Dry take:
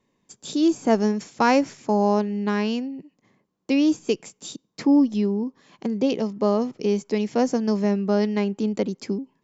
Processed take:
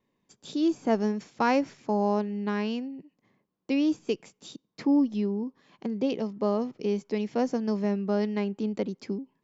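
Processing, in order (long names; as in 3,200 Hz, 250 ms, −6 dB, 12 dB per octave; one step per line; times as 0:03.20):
low-pass filter 5,000 Hz 12 dB per octave
level −5.5 dB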